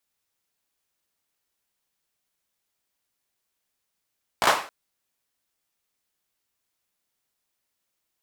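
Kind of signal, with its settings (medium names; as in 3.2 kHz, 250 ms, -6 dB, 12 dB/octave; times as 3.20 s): hand clap length 0.27 s, apart 17 ms, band 910 Hz, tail 0.42 s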